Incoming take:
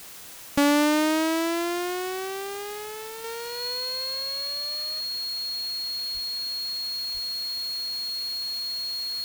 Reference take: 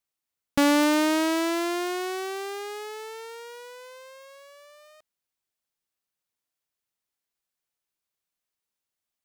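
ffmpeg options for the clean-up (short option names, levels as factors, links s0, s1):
-filter_complex "[0:a]bandreject=f=4300:w=30,asplit=3[s0][s1][s2];[s0]afade=t=out:st=6.13:d=0.02[s3];[s1]highpass=f=140:w=0.5412,highpass=f=140:w=1.3066,afade=t=in:st=6.13:d=0.02,afade=t=out:st=6.25:d=0.02[s4];[s2]afade=t=in:st=6.25:d=0.02[s5];[s3][s4][s5]amix=inputs=3:normalize=0,asplit=3[s6][s7][s8];[s6]afade=t=out:st=7.13:d=0.02[s9];[s7]highpass=f=140:w=0.5412,highpass=f=140:w=1.3066,afade=t=in:st=7.13:d=0.02,afade=t=out:st=7.25:d=0.02[s10];[s8]afade=t=in:st=7.25:d=0.02[s11];[s9][s10][s11]amix=inputs=3:normalize=0,afwtdn=0.0071,asetnsamples=n=441:p=0,asendcmd='3.24 volume volume -6dB',volume=1"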